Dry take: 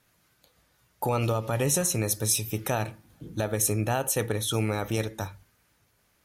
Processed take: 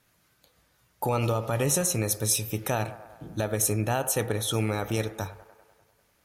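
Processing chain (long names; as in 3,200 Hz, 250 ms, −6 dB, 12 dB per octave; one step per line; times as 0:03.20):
delay with a band-pass on its return 99 ms, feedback 67%, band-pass 880 Hz, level −14 dB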